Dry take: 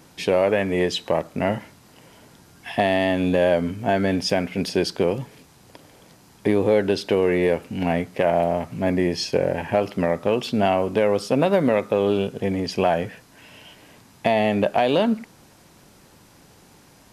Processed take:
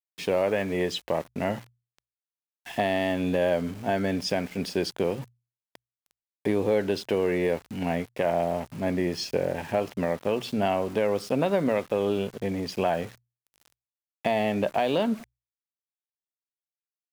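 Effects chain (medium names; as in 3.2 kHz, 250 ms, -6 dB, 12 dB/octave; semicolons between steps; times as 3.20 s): small samples zeroed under -36 dBFS; hum notches 60/120 Hz; trim -5.5 dB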